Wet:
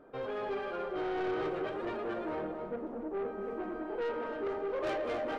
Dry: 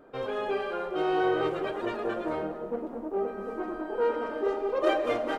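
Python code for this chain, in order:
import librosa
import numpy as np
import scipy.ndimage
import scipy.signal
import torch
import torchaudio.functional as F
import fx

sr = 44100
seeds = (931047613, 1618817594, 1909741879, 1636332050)

p1 = fx.high_shelf(x, sr, hz=4300.0, db=-10.5)
p2 = 10.0 ** (-28.5 / 20.0) * np.tanh(p1 / 10.0 ** (-28.5 / 20.0))
p3 = p2 + fx.echo_single(p2, sr, ms=273, db=-10.5, dry=0)
y = p3 * 10.0 ** (-2.5 / 20.0)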